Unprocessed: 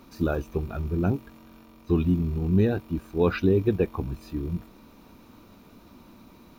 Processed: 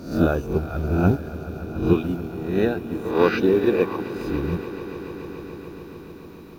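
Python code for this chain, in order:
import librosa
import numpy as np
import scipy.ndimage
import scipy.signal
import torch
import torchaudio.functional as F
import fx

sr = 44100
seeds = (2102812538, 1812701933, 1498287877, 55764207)

y = fx.spec_swells(x, sr, rise_s=0.68)
y = fx.highpass(y, sr, hz=290.0, slope=12, at=(1.93, 4.16))
y = fx.echo_swell(y, sr, ms=143, loudest=5, wet_db=-15)
y = fx.upward_expand(y, sr, threshold_db=-31.0, expansion=1.5)
y = F.gain(torch.from_numpy(y), 6.0).numpy()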